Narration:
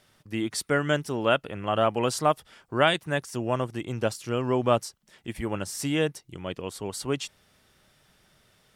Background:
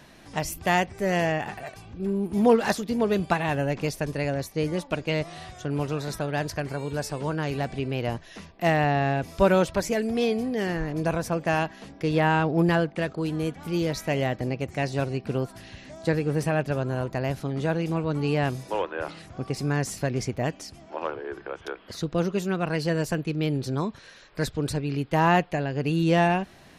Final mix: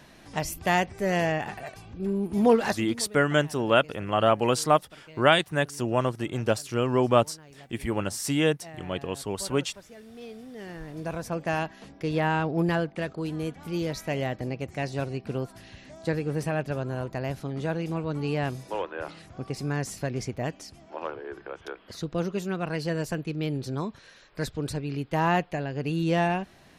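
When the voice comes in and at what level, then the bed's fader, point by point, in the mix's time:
2.45 s, +2.0 dB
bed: 2.66 s -1 dB
3.14 s -22.5 dB
9.93 s -22.5 dB
11.38 s -3.5 dB

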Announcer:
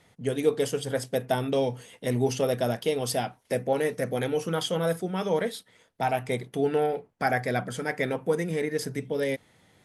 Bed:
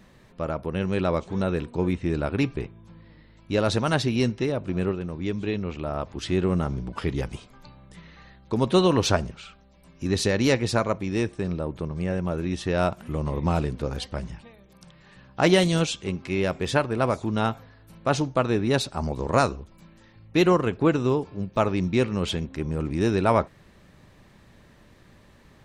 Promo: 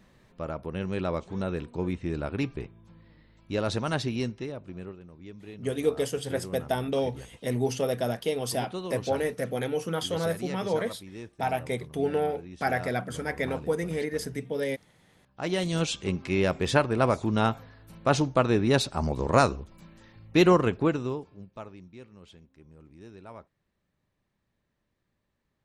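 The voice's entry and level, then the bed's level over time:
5.40 s, -2.0 dB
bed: 4.08 s -5.5 dB
5.00 s -16.5 dB
15.26 s -16.5 dB
15.98 s 0 dB
20.67 s 0 dB
21.90 s -25 dB

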